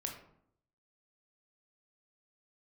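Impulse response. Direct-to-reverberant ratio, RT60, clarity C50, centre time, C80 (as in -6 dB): 1.5 dB, 0.70 s, 6.5 dB, 26 ms, 10.0 dB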